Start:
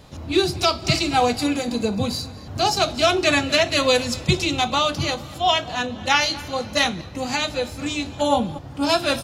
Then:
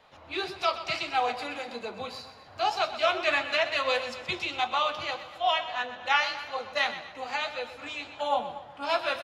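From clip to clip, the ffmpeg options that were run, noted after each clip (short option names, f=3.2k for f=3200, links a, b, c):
-filter_complex "[0:a]acrossover=split=550 3400:gain=0.0891 1 0.126[a][b][c];[a][b][c]amix=inputs=3:normalize=0,flanger=delay=4.2:depth=7.8:regen=62:speed=1.7:shape=sinusoidal,asplit=2[d][e];[e]aecho=0:1:125|250|375|500:0.237|0.102|0.0438|0.0189[f];[d][f]amix=inputs=2:normalize=0"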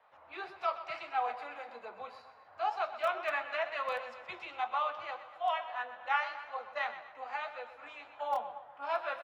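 -filter_complex "[0:a]acrossover=split=560 2000:gain=0.141 1 0.112[a][b][c];[a][b][c]amix=inputs=3:normalize=0,acrossover=split=390[d][e];[d]aeval=exprs='(mod(112*val(0)+1,2)-1)/112':c=same[f];[f][e]amix=inputs=2:normalize=0,volume=-3.5dB"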